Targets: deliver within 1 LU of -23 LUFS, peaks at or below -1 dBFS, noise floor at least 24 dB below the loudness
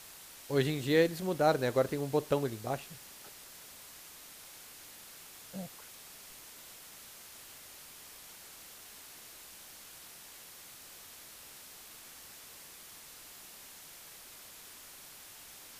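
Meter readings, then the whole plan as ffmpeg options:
noise floor -52 dBFS; noise floor target -56 dBFS; loudness -32.0 LUFS; peak -14.0 dBFS; loudness target -23.0 LUFS
-> -af "afftdn=nr=6:nf=-52"
-af "volume=9dB"

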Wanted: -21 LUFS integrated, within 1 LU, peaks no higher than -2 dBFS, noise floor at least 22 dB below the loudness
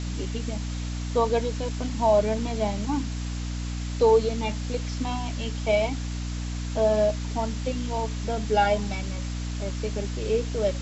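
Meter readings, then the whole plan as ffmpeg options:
hum 60 Hz; harmonics up to 300 Hz; hum level -28 dBFS; noise floor -31 dBFS; noise floor target -49 dBFS; loudness -27.0 LUFS; peak -9.5 dBFS; loudness target -21.0 LUFS
-> -af "bandreject=f=60:t=h:w=4,bandreject=f=120:t=h:w=4,bandreject=f=180:t=h:w=4,bandreject=f=240:t=h:w=4,bandreject=f=300:t=h:w=4"
-af "afftdn=nr=18:nf=-31"
-af "volume=6dB"

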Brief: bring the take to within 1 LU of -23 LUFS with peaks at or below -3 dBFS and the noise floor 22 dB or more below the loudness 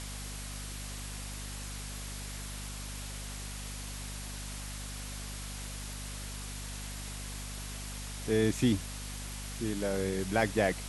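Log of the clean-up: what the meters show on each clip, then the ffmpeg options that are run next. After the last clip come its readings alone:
hum 50 Hz; harmonics up to 250 Hz; hum level -40 dBFS; noise floor -41 dBFS; noise floor target -59 dBFS; loudness -36.5 LUFS; peak -13.0 dBFS; loudness target -23.0 LUFS
-> -af "bandreject=f=50:t=h:w=6,bandreject=f=100:t=h:w=6,bandreject=f=150:t=h:w=6,bandreject=f=200:t=h:w=6,bandreject=f=250:t=h:w=6"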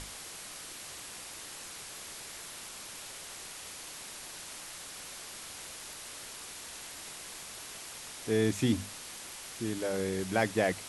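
hum none; noise floor -46 dBFS; noise floor target -59 dBFS
-> -af "afftdn=nr=13:nf=-46"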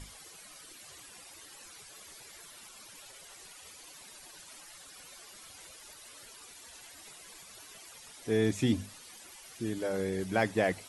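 noise floor -52 dBFS; noise floor target -54 dBFS
-> -af "afftdn=nr=6:nf=-52"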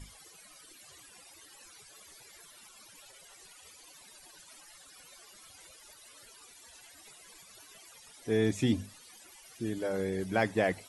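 noise floor -56 dBFS; loudness -32.0 LUFS; peak -13.0 dBFS; loudness target -23.0 LUFS
-> -af "volume=9dB"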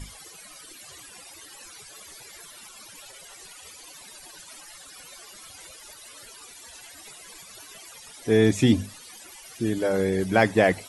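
loudness -23.0 LUFS; peak -4.0 dBFS; noise floor -47 dBFS

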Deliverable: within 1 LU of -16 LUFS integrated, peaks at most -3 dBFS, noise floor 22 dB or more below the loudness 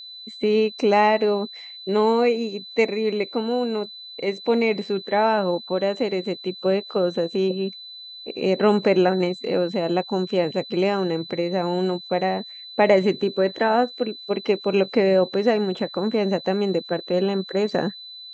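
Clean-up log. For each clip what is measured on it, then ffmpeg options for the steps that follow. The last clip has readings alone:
steady tone 4000 Hz; tone level -37 dBFS; loudness -22.5 LUFS; peak -4.5 dBFS; loudness target -16.0 LUFS
-> -af "bandreject=f=4k:w=30"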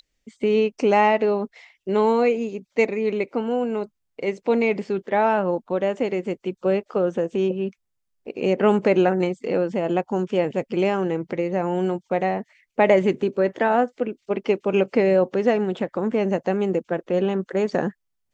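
steady tone none; loudness -22.5 LUFS; peak -4.5 dBFS; loudness target -16.0 LUFS
-> -af "volume=6.5dB,alimiter=limit=-3dB:level=0:latency=1"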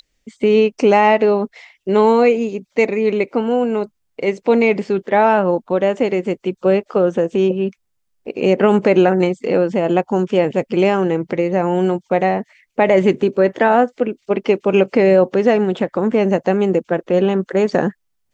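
loudness -16.5 LUFS; peak -3.0 dBFS; noise floor -69 dBFS

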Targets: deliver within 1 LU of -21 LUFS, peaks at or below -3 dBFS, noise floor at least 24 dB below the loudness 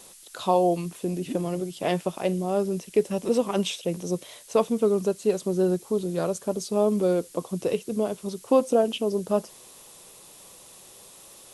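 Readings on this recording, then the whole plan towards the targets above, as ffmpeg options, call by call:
noise floor -49 dBFS; noise floor target -50 dBFS; loudness -26.0 LUFS; peak -9.0 dBFS; loudness target -21.0 LUFS
-> -af "afftdn=nr=6:nf=-49"
-af "volume=5dB"

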